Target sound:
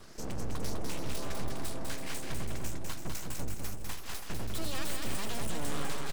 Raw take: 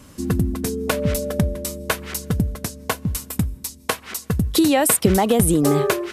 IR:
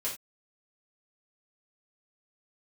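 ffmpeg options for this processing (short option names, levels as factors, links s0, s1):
-filter_complex "[0:a]afftfilt=real='re*pow(10,10/40*sin(2*PI*(0.61*log(max(b,1)*sr/1024/100)/log(2)-(1.7)*(pts-256)/sr)))':imag='im*pow(10,10/40*sin(2*PI*(0.61*log(max(b,1)*sr/1024/100)/log(2)-(1.7)*(pts-256)/sr)))':win_size=1024:overlap=0.75,lowpass=f=9100:w=0.5412,lowpass=f=9100:w=1.3066,acrossover=split=210|1100[s0][s1][s2];[s1]acompressor=threshold=0.0178:ratio=6[s3];[s2]alimiter=limit=0.15:level=0:latency=1:release=77[s4];[s0][s3][s4]amix=inputs=3:normalize=0,aeval=exprs='(tanh(22.4*val(0)+0.35)-tanh(0.35))/22.4':c=same,aeval=exprs='abs(val(0))':c=same,asplit=2[s5][s6];[s6]aecho=0:1:200|330|414.5|469.4|505.1:0.631|0.398|0.251|0.158|0.1[s7];[s5][s7]amix=inputs=2:normalize=0,volume=0.668"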